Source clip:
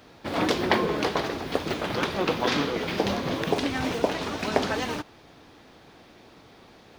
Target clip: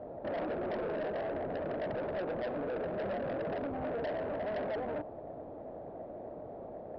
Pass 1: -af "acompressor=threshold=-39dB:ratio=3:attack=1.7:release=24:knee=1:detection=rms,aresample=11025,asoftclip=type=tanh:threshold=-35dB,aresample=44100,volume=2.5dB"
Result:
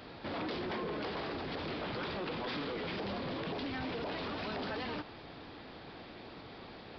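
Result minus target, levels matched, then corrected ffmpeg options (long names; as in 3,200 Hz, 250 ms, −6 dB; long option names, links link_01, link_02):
500 Hz band −4.0 dB
-af "acompressor=threshold=-39dB:ratio=3:attack=1.7:release=24:knee=1:detection=rms,lowpass=frequency=620:width_type=q:width=5.4,aresample=11025,asoftclip=type=tanh:threshold=-35dB,aresample=44100,volume=2.5dB"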